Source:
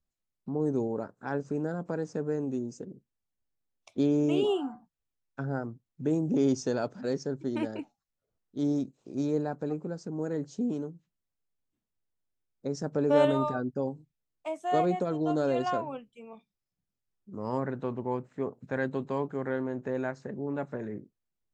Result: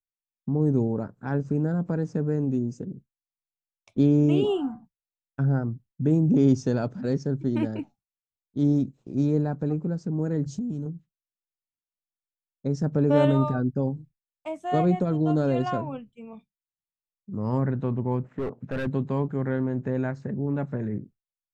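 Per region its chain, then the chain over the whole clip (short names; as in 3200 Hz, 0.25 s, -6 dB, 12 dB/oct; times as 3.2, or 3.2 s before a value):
10.46–10.86 tone controls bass +10 dB, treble +10 dB + compressor, threshold -36 dBFS
18.24–18.87 bell 4100 Hz -4 dB 0.38 oct + overdrive pedal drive 15 dB, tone 1200 Hz, clips at -17.5 dBFS + overloaded stage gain 29 dB
whole clip: high shelf 4200 Hz +9.5 dB; expander -50 dBFS; tone controls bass +14 dB, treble -11 dB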